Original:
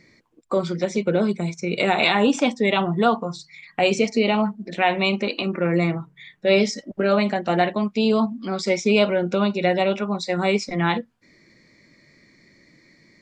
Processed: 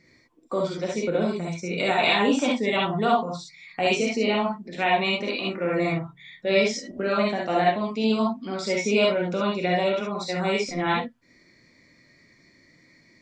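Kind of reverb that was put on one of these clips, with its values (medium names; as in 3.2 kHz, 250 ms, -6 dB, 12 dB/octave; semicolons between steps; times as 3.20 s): gated-style reverb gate 90 ms rising, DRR -3 dB; trim -6.5 dB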